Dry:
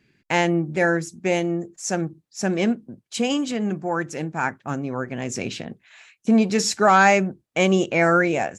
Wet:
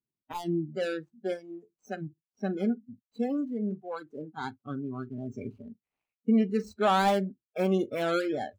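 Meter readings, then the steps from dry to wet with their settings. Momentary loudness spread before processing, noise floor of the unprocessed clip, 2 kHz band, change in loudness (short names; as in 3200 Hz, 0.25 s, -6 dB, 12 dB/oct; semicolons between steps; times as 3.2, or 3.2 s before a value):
12 LU, -73 dBFS, -16.0 dB, -9.0 dB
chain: median filter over 25 samples; spectral noise reduction 25 dB; dynamic EQ 6200 Hz, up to -4 dB, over -55 dBFS, Q 2.6; gain -6 dB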